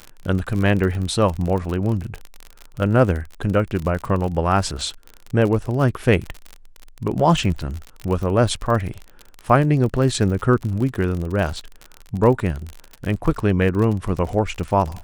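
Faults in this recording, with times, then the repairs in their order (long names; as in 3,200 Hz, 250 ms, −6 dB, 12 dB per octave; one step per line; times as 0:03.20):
surface crackle 43 per second −25 dBFS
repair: click removal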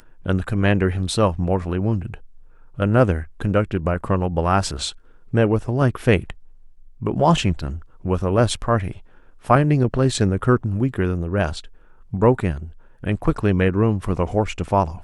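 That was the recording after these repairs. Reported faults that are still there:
none of them is left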